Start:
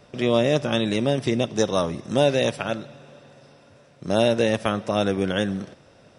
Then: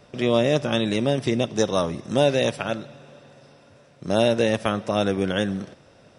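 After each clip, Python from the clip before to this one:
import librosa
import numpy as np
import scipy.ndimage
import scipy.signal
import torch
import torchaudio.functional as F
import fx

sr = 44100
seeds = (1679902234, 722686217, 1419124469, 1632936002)

y = x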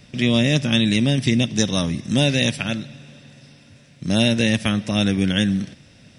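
y = fx.band_shelf(x, sr, hz=710.0, db=-13.0, octaves=2.3)
y = y * 10.0 ** (7.5 / 20.0)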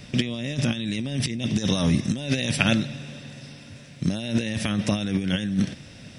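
y = fx.over_compress(x, sr, threshold_db=-23.0, ratio=-0.5)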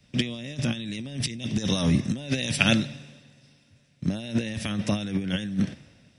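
y = fx.band_widen(x, sr, depth_pct=70)
y = y * 10.0 ** (-2.5 / 20.0)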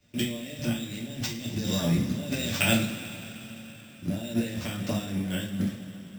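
y = fx.rev_double_slope(x, sr, seeds[0], early_s=0.35, late_s=4.4, knee_db=-18, drr_db=-4.0)
y = np.repeat(y[::4], 4)[:len(y)]
y = y * 10.0 ** (-7.5 / 20.0)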